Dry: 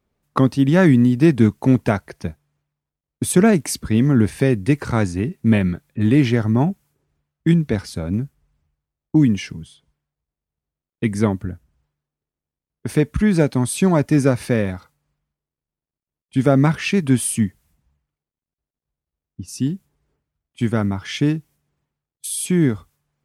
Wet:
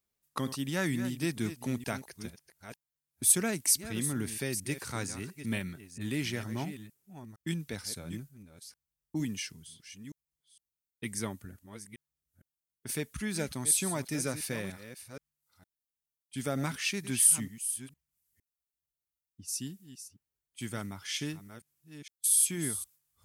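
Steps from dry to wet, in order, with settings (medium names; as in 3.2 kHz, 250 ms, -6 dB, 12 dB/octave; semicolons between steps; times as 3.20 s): chunks repeated in reverse 460 ms, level -11.5 dB; pre-emphasis filter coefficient 0.9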